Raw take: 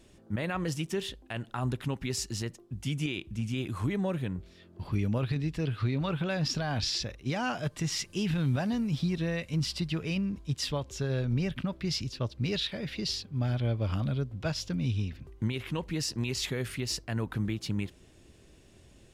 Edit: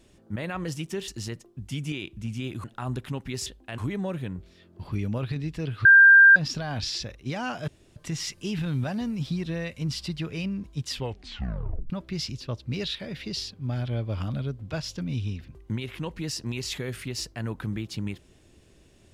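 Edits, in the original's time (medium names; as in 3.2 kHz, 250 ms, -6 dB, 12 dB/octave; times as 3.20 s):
1.08–1.40 s: swap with 2.22–3.78 s
5.85–6.36 s: bleep 1.59 kHz -9.5 dBFS
7.68 s: insert room tone 0.28 s
10.64 s: tape stop 0.98 s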